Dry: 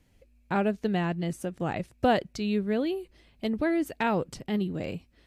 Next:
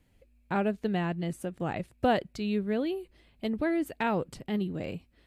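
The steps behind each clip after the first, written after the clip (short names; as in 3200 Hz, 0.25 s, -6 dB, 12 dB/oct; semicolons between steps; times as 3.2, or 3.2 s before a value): bell 5800 Hz -6 dB 0.52 oct; gain -2 dB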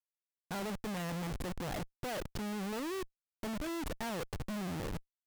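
ending faded out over 0.60 s; Schmitt trigger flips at -40.5 dBFS; gain -6 dB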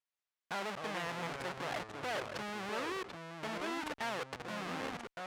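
band-pass 1700 Hz, Q 0.53; echoes that change speed 0.124 s, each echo -4 st, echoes 2, each echo -6 dB; gain +4.5 dB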